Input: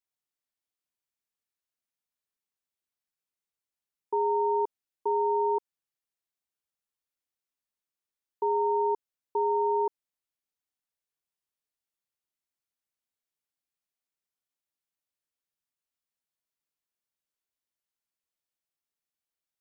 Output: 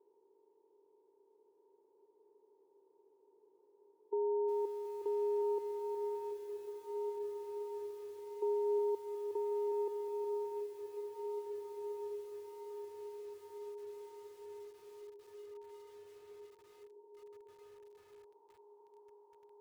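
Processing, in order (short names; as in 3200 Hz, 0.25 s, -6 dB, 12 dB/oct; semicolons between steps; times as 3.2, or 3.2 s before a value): per-bin compression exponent 0.4; band-pass sweep 400 Hz -> 840 Hz, 17.2–18.57; diffused feedback echo 1.708 s, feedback 58%, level -5.5 dB; lo-fi delay 0.364 s, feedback 55%, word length 9-bit, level -7.5 dB; gain -5 dB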